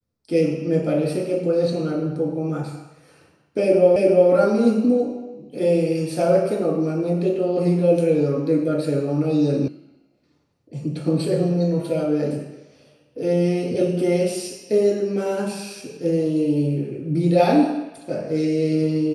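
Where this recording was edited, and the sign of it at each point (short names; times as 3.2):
3.96 repeat of the last 0.35 s
9.68 sound cut off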